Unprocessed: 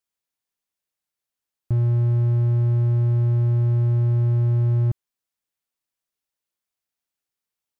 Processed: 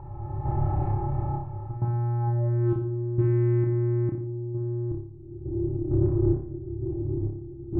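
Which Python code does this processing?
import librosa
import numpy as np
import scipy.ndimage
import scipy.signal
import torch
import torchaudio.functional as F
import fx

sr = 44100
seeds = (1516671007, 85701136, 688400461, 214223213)

p1 = fx.bin_compress(x, sr, power=0.2)
p2 = fx.recorder_agc(p1, sr, target_db=-19.5, rise_db_per_s=25.0, max_gain_db=30)
p3 = fx.peak_eq(p2, sr, hz=230.0, db=-3.5, octaves=2.5)
p4 = p3 + 0.98 * np.pad(p3, (int(2.3 * sr / 1000.0), 0))[:len(p3)]
p5 = fx.tremolo_random(p4, sr, seeds[0], hz=2.2, depth_pct=90)
p6 = fx.filter_sweep_lowpass(p5, sr, from_hz=930.0, to_hz=340.0, start_s=2.19, end_s=2.73, q=6.5)
p7 = 10.0 ** (-25.0 / 20.0) * np.tanh(p6 / 10.0 ** (-25.0 / 20.0))
p8 = p6 + (p7 * librosa.db_to_amplitude(-5.5))
p9 = fx.room_flutter(p8, sr, wall_m=5.0, rt60_s=0.55)
y = p9 * librosa.db_to_amplitude(-2.5)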